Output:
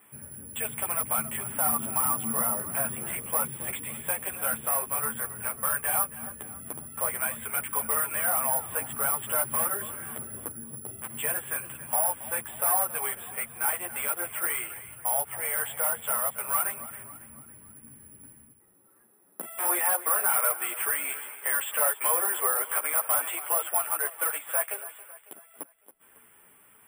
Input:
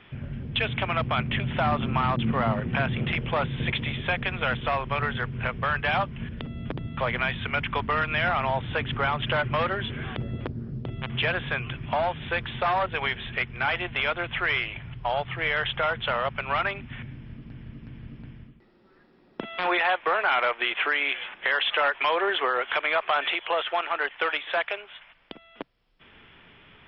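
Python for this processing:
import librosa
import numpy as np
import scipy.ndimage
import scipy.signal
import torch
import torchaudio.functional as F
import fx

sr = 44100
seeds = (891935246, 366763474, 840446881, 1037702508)

p1 = scipy.signal.sosfilt(scipy.signal.butter(2, 1100.0, 'lowpass', fs=sr, output='sos'), x)
p2 = fx.tilt_eq(p1, sr, slope=4.0)
p3 = p2 + fx.echo_feedback(p2, sr, ms=276, feedback_pct=48, wet_db=-15.0, dry=0)
p4 = (np.kron(p3[::4], np.eye(4)[0]) * 4)[:len(p3)]
y = fx.ensemble(p4, sr)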